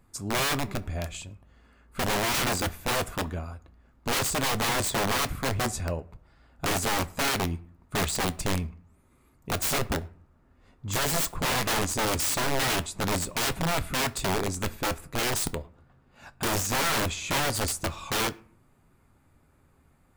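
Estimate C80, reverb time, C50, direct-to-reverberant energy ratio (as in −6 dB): 25.0 dB, 0.50 s, 21.5 dB, 11.5 dB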